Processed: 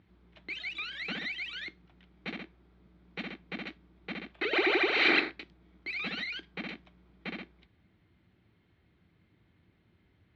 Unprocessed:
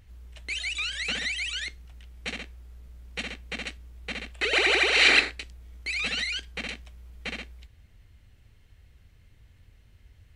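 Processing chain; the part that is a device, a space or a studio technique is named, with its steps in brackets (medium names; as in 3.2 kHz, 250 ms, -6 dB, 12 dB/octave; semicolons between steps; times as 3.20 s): kitchen radio (cabinet simulation 160–3500 Hz, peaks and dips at 180 Hz +8 dB, 330 Hz +9 dB, 510 Hz -5 dB, 1.8 kHz -4 dB, 2.8 kHz -8 dB); trim -2 dB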